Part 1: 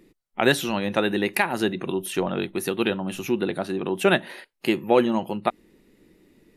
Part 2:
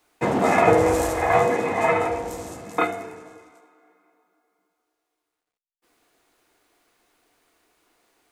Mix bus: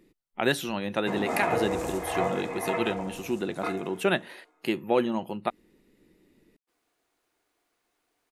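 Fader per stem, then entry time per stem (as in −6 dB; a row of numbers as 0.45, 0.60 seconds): −5.5, −10.5 decibels; 0.00, 0.85 seconds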